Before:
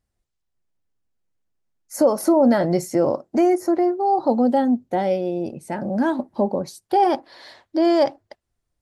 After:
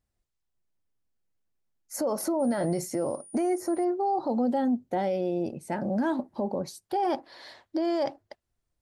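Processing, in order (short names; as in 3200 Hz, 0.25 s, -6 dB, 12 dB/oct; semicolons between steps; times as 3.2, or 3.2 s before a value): limiter -16.5 dBFS, peak gain reduction 10 dB; 2.39–3.83 whine 9500 Hz -44 dBFS; gain -3.5 dB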